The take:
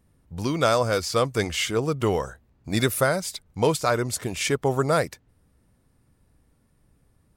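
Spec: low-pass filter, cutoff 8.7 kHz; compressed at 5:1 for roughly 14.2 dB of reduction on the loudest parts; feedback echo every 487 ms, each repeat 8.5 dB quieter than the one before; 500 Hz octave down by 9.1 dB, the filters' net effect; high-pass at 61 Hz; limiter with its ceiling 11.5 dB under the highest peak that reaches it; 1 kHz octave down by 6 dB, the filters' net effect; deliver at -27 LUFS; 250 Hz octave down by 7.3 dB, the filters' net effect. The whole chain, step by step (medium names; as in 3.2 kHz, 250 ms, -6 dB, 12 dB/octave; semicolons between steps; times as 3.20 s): high-pass 61 Hz; low-pass 8.7 kHz; peaking EQ 250 Hz -7.5 dB; peaking EQ 500 Hz -7.5 dB; peaking EQ 1 kHz -6 dB; compression 5:1, threshold -38 dBFS; peak limiter -36.5 dBFS; feedback delay 487 ms, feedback 38%, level -8.5 dB; trim +19 dB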